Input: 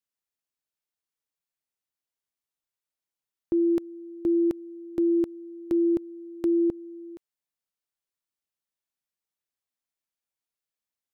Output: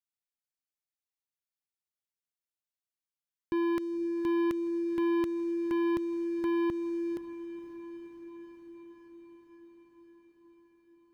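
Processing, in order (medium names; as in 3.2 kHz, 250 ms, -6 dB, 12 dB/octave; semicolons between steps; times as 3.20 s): peaking EQ 540 Hz -4 dB 2.2 oct; in parallel at +1 dB: peak limiter -31 dBFS, peak gain reduction 9.5 dB; on the sum: waveshaping leveller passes 3; echo that smears into a reverb 512 ms, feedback 73%, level -14 dB; trim -8 dB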